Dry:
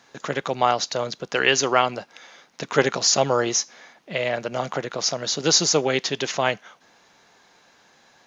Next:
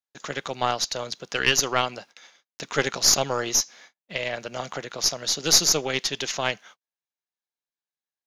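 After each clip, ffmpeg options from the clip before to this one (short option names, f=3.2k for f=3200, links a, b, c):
-af "highshelf=f=2k:g=9.5,agate=range=-41dB:threshold=-40dB:ratio=16:detection=peak,aeval=exprs='1.88*(cos(1*acos(clip(val(0)/1.88,-1,1)))-cos(1*PI/2))+0.266*(cos(2*acos(clip(val(0)/1.88,-1,1)))-cos(2*PI/2))+0.335*(cos(4*acos(clip(val(0)/1.88,-1,1)))-cos(4*PI/2))':c=same,volume=-7.5dB"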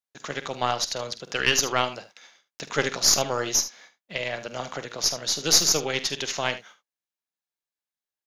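-af "aecho=1:1:48|75:0.211|0.188,volume=-1dB"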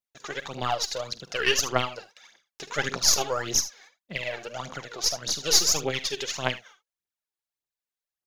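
-af "aphaser=in_gain=1:out_gain=1:delay=2.8:decay=0.67:speed=1.7:type=triangular,volume=-4.5dB"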